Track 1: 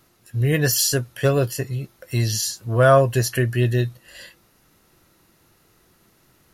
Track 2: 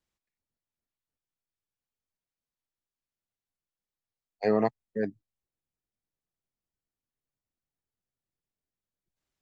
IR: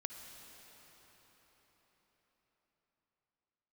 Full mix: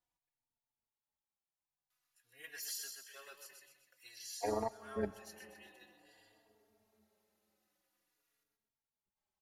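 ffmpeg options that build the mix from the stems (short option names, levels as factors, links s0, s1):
-filter_complex "[0:a]highpass=1300,adelay=1900,volume=0.15,asplit=2[s0][s1];[s1]volume=0.531[s2];[1:a]equalizer=f=860:t=o:w=0.53:g=13.5,alimiter=limit=0.158:level=0:latency=1:release=463,volume=0.631,asplit=3[s3][s4][s5];[s4]volume=0.398[s6];[s5]apad=whole_len=371791[s7];[s0][s7]sidechaincompress=threshold=0.00224:ratio=4:attack=43:release=953[s8];[2:a]atrim=start_sample=2205[s9];[s6][s9]afir=irnorm=-1:irlink=0[s10];[s2]aecho=0:1:127|254|381|508|635|762:1|0.44|0.194|0.0852|0.0375|0.0165[s11];[s8][s3][s10][s11]amix=inputs=4:normalize=0,tremolo=f=130:d=0.788,asplit=2[s12][s13];[s13]adelay=3.6,afreqshift=-0.5[s14];[s12][s14]amix=inputs=2:normalize=1"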